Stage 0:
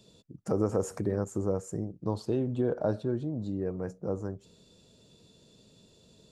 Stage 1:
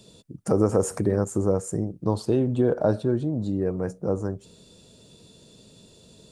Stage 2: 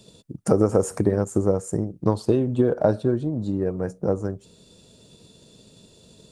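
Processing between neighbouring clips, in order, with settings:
bell 9200 Hz +9 dB 0.29 oct; gain +7 dB
transient shaper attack +5 dB, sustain -1 dB

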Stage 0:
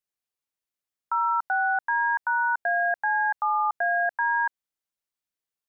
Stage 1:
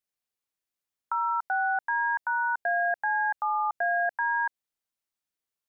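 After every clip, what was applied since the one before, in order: dynamic EQ 1200 Hz, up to -4 dB, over -34 dBFS, Q 1.2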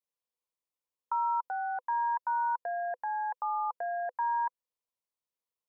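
thirty-one-band EQ 500 Hz +12 dB, 1000 Hz +11 dB, 1600 Hz -9 dB; gain -8 dB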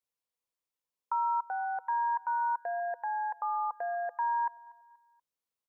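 feedback echo 0.24 s, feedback 43%, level -23 dB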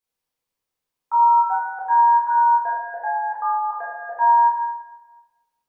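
reverb RT60 1.1 s, pre-delay 12 ms, DRR -6 dB

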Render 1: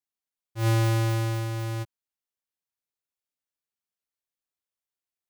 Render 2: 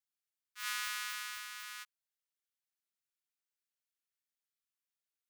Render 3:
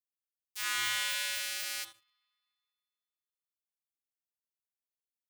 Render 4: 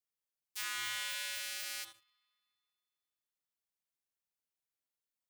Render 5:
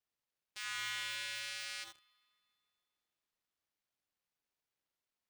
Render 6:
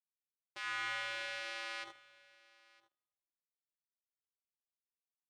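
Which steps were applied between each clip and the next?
steep high-pass 1200 Hz 48 dB/oct; gain -2.5 dB
differentiator; spring tank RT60 2.6 s, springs 39/57 ms, chirp 60 ms, DRR 2.5 dB; sample leveller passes 5
compressor, threshold -34 dBFS, peak gain reduction 6.5 dB
median filter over 5 samples; limiter -34.5 dBFS, peak gain reduction 7.5 dB; gain +4.5 dB
G.711 law mismatch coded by A; band-pass 540 Hz, Q 0.77; echo 0.96 s -23 dB; gain +13.5 dB

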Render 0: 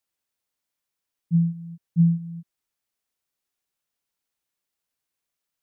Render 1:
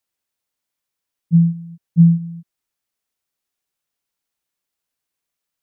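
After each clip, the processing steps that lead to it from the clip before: dynamic EQ 140 Hz, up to +6 dB, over -31 dBFS, Q 0.76; gain +2 dB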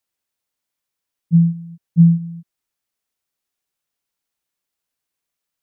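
nothing audible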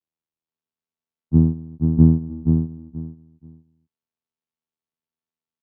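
vocoder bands 4, saw 80.5 Hz; on a send: feedback echo 0.48 s, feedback 21%, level -5 dB; on the sum: gain -1.5 dB

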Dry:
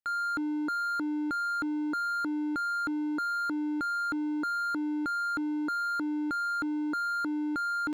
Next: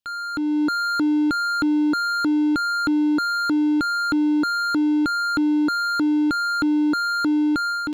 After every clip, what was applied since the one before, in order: low shelf 380 Hz +8.5 dB; AGC gain up to 7 dB; EQ curve 2000 Hz 0 dB, 3000 Hz +11 dB, 8900 Hz +4 dB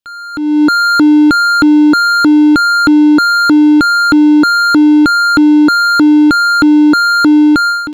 AGC gain up to 13.5 dB; gain +1.5 dB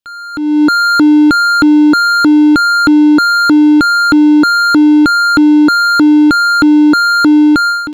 nothing audible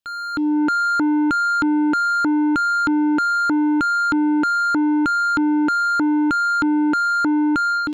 in parallel at 0 dB: limiter -9 dBFS, peak gain reduction 7.5 dB; on the sum: soft clip -8.5 dBFS, distortion -11 dB; gain -7.5 dB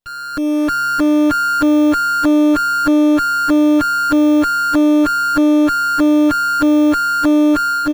minimum comb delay 7.1 ms; in parallel at -7 dB: sample-and-hold 15×; on the sum: feedback echo 0.614 s, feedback 29%, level -7 dB

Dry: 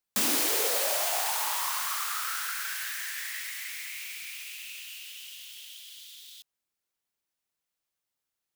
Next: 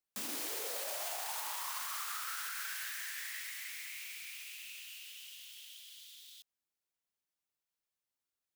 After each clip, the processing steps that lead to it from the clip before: limiter -23.5 dBFS, peak gain reduction 9.5 dB; gain -6.5 dB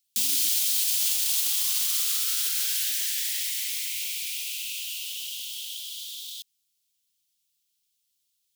EQ curve 130 Hz 0 dB, 300 Hz -5 dB, 480 Hz -29 dB, 1800 Hz -8 dB, 3200 Hz +10 dB; gain +6.5 dB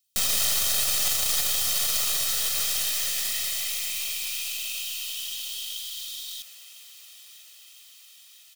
tracing distortion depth 0.029 ms; comb 1.6 ms, depth 63%; thinning echo 1.002 s, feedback 69%, high-pass 310 Hz, level -18 dB

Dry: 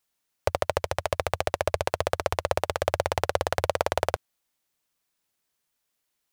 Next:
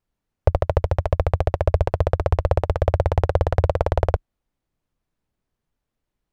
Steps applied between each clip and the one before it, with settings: tilt -4.5 dB/oct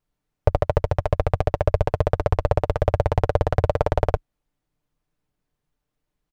comb 6.7 ms, depth 40%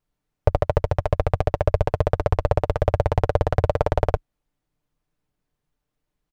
nothing audible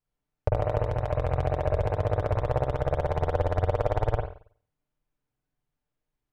reverb, pre-delay 46 ms, DRR -1 dB; gain -8.5 dB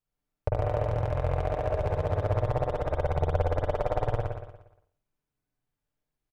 feedback echo 0.118 s, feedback 41%, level -4 dB; gain -3 dB

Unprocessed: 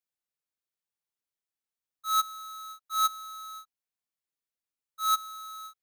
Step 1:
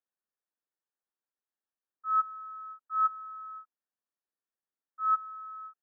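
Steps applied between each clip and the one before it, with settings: FFT band-pass 190–1900 Hz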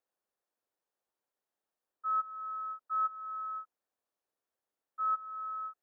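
bell 570 Hz +10.5 dB 2.1 oct; compressor 2.5:1, threshold -34 dBFS, peak gain reduction 11 dB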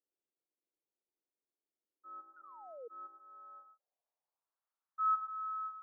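non-linear reverb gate 0.14 s rising, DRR 7 dB; painted sound fall, 2.36–2.88, 450–1500 Hz -39 dBFS; band-pass sweep 320 Hz -> 1200 Hz, 2.93–4.7

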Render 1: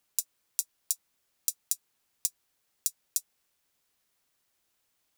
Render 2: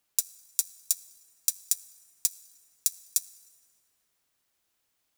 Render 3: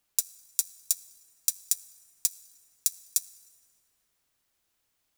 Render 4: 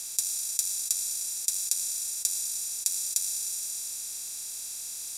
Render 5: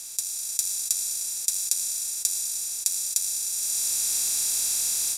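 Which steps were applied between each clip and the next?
sample leveller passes 1; reverb RT60 2.8 s, pre-delay 5 ms, DRR 16 dB; gain +1 dB
low shelf 85 Hz +7 dB
per-bin compression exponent 0.2; LPF 12000 Hz 24 dB/oct; gain -2.5 dB
AGC gain up to 13 dB; gain -1 dB

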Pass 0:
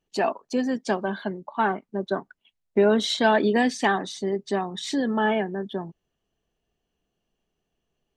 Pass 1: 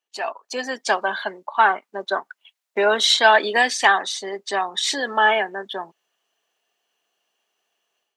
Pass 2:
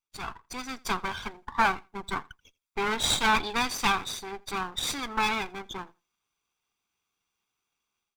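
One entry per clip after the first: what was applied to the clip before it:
HPF 840 Hz 12 dB/oct; AGC gain up to 11 dB
minimum comb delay 0.85 ms; feedback echo 83 ms, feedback 16%, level -24 dB; gain -6.5 dB

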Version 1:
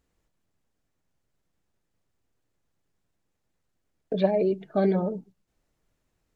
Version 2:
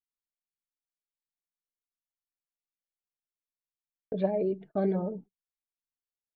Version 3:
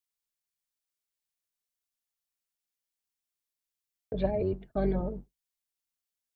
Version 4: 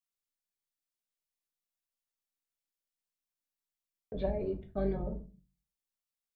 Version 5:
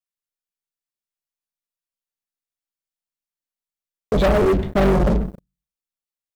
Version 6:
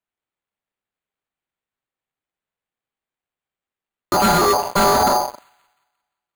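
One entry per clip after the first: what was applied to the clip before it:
LPF 1300 Hz 6 dB/oct; gate -42 dBFS, range -33 dB; gain -4.5 dB
octaver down 2 oct, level -1 dB; high shelf 2100 Hz +9 dB; gain -2 dB
shoebox room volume 130 m³, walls furnished, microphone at 1.1 m; gain -7 dB
sample leveller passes 5; gain +7 dB
ring modulator 790 Hz; thin delay 0.175 s, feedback 44%, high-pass 3100 Hz, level -13 dB; careless resampling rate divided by 8×, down none, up hold; gain +3.5 dB

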